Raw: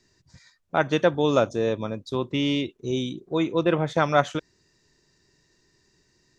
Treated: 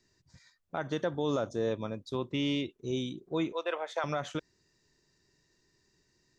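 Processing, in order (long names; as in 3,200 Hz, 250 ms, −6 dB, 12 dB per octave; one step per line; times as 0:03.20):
0:00.77–0:01.71: parametric band 2,500 Hz −10 dB 0.25 octaves
0:03.52–0:04.04: high-pass filter 520 Hz 24 dB per octave
brickwall limiter −14.5 dBFS, peak gain reduction 11 dB
level −6.5 dB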